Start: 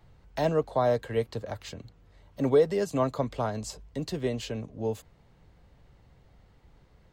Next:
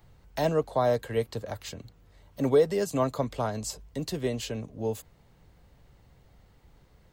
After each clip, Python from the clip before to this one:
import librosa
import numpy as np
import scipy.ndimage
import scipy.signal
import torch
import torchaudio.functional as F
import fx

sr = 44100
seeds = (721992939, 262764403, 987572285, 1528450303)

y = fx.high_shelf(x, sr, hz=8000.0, db=11.0)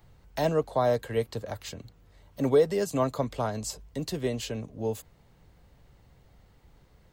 y = x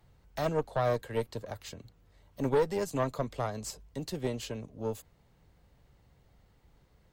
y = fx.tube_stage(x, sr, drive_db=20.0, bias=0.8)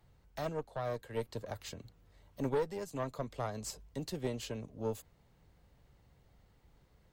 y = fx.rider(x, sr, range_db=5, speed_s=0.5)
y = y * librosa.db_to_amplitude(-6.0)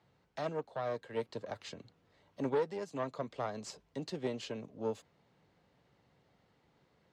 y = fx.bandpass_edges(x, sr, low_hz=170.0, high_hz=5200.0)
y = y * librosa.db_to_amplitude(1.0)